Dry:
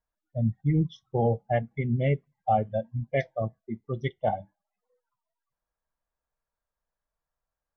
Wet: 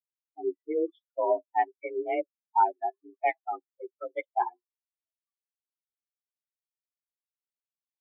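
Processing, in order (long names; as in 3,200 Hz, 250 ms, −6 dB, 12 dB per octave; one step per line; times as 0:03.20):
spectral dynamics exaggerated over time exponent 2
speed change −3%
single-sideband voice off tune +170 Hz 210–2,300 Hz
level +3.5 dB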